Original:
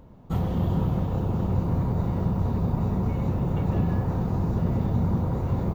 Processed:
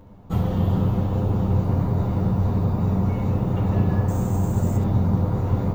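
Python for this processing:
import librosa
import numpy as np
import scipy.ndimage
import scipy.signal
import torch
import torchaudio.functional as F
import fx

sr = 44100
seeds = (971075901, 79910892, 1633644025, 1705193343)

y = fx.resample_bad(x, sr, factor=6, down='none', up='hold', at=(4.08, 4.77))
y = fx.room_early_taps(y, sr, ms=(10, 72), db=(-3.0, -6.5))
y = y * librosa.db_to_amplitude(1.0)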